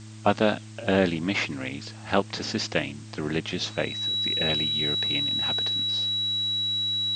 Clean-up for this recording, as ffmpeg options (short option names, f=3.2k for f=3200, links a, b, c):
-af "bandreject=f=108.2:t=h:w=4,bandreject=f=216.4:t=h:w=4,bandreject=f=324.6:t=h:w=4,bandreject=f=3.9k:w=30,afftdn=nr=30:nf=-42"